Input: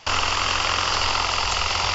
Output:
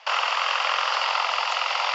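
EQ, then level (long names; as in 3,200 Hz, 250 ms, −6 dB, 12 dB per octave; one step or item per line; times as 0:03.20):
Butterworth high-pass 520 Hz 48 dB per octave
low-pass filter 3,500 Hz 12 dB per octave
0.0 dB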